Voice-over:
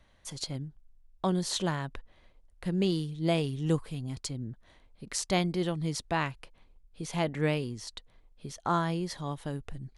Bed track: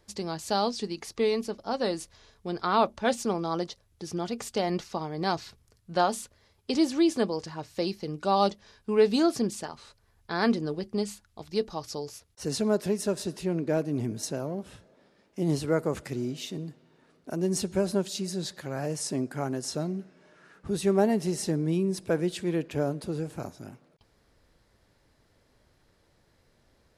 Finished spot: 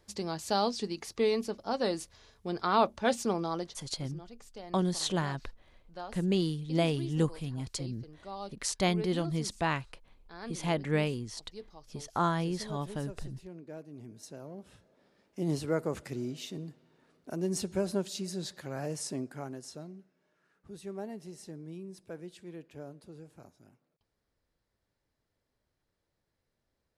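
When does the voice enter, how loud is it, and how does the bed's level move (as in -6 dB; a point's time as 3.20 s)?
3.50 s, -0.5 dB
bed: 3.42 s -2 dB
4.22 s -18 dB
13.95 s -18 dB
15.13 s -4.5 dB
19.01 s -4.5 dB
20.10 s -17 dB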